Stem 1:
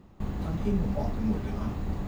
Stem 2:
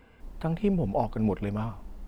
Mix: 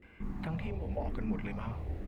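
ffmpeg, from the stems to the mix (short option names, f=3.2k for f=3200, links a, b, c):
-filter_complex "[0:a]lowpass=f=1.2k:p=1,asplit=2[a][b];[b]afreqshift=-1[c];[a][c]amix=inputs=2:normalize=1,volume=-4dB[d];[1:a]equalizer=f=2.1k:w=1.5:g=14,alimiter=limit=-19.5dB:level=0:latency=1:release=77,acompressor=threshold=-30dB:ratio=6,adelay=23,volume=-6.5dB[e];[d][e]amix=inputs=2:normalize=0"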